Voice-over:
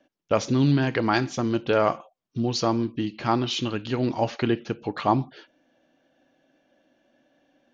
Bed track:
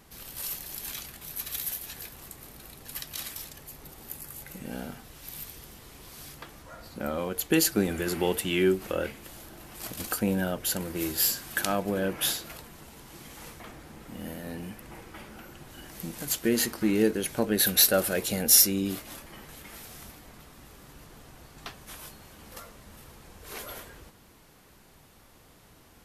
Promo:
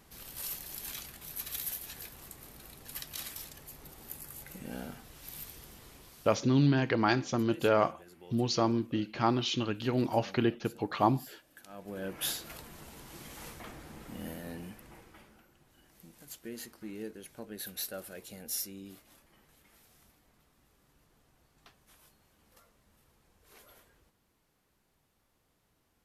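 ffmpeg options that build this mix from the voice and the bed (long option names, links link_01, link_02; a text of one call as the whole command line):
ffmpeg -i stem1.wav -i stem2.wav -filter_complex "[0:a]adelay=5950,volume=-4.5dB[link_01];[1:a]volume=20.5dB,afade=type=out:start_time=5.86:duration=0.63:silence=0.0794328,afade=type=in:start_time=11.68:duration=1.06:silence=0.0595662,afade=type=out:start_time=14.01:duration=1.46:silence=0.149624[link_02];[link_01][link_02]amix=inputs=2:normalize=0" out.wav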